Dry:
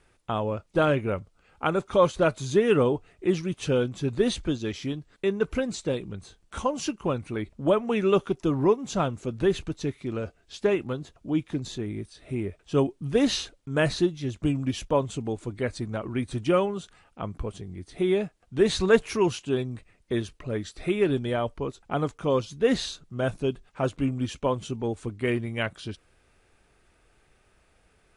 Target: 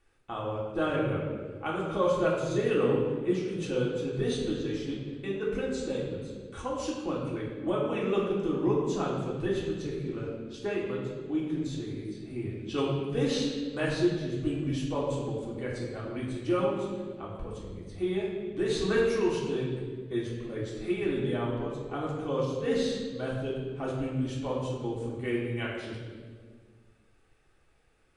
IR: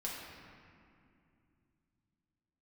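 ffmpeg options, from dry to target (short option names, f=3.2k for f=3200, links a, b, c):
-filter_complex "[0:a]asettb=1/sr,asplit=3[a][b][c];[a]atrim=end=12.494[d];[b]atrim=start=12.49:end=12.93,asetpts=PTS-STARTPTS,afade=t=in:d=0.004:c=qsin,afade=t=out:st=0.436:d=0.004:c=qsin,equalizer=f=3.2k:w=0.64:g=11.5[e];[c]atrim=start=12.926[f];[d][e]acrossfade=d=0.004:c1=hsin:c2=qsin[g];[g][f]acrossfade=d=0.004:c1=qsin:c2=hsin[h];[1:a]atrim=start_sample=2205,asetrate=74970,aresample=44100[i];[h][i]afir=irnorm=-1:irlink=0,volume=-2dB"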